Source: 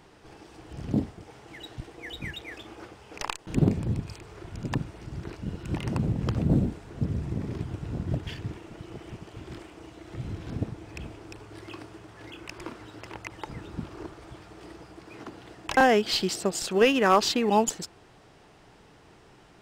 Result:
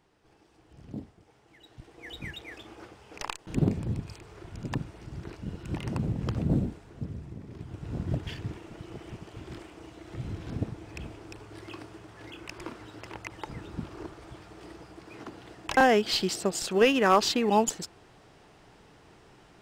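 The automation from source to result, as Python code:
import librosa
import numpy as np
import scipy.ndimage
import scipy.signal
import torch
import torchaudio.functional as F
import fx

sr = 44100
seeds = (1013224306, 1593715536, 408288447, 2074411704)

y = fx.gain(x, sr, db=fx.line((1.61, -13.0), (2.12, -3.0), (6.55, -3.0), (7.45, -12.0), (7.97, -1.0)))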